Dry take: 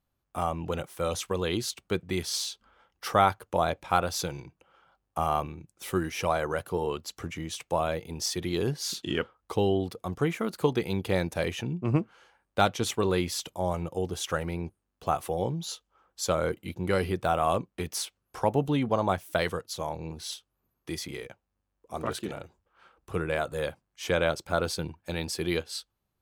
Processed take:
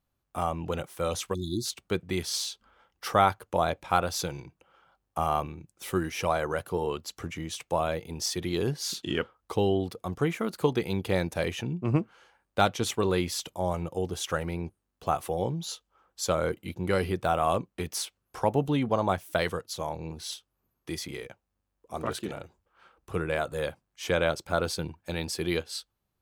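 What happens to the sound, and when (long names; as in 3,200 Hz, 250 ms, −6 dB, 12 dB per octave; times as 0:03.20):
0:01.34–0:01.66: time-frequency box erased 380–3,400 Hz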